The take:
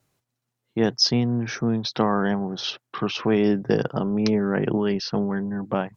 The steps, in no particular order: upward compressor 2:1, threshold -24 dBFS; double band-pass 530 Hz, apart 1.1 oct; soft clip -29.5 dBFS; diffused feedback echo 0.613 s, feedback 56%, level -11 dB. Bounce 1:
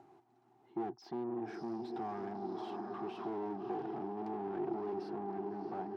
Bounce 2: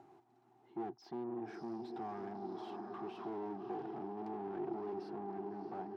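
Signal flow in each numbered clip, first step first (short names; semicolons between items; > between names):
diffused feedback echo > soft clip > upward compressor > double band-pass; upward compressor > diffused feedback echo > soft clip > double band-pass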